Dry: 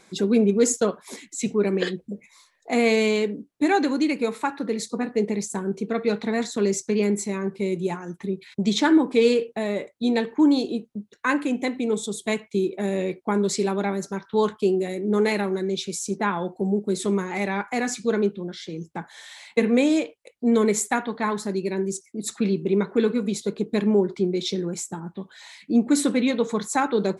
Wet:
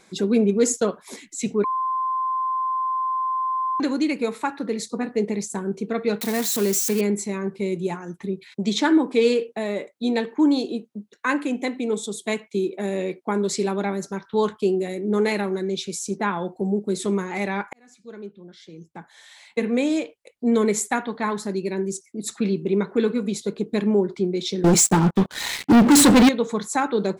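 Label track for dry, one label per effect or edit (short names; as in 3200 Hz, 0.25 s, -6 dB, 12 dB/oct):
1.640000	3.800000	bleep 1040 Hz -21 dBFS
6.210000	7.010000	switching spikes of -19 dBFS
8.470000	13.530000	HPF 170 Hz
17.730000	20.490000	fade in
24.640000	26.290000	sample leveller passes 5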